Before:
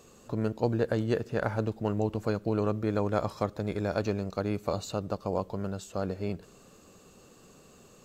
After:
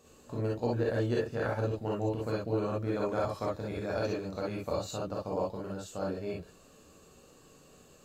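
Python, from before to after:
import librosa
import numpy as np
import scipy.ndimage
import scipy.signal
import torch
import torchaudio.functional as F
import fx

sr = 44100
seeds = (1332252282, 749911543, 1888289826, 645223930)

y = fx.rev_gated(x, sr, seeds[0], gate_ms=80, shape='rising', drr_db=-4.5)
y = y * librosa.db_to_amplitude(-7.5)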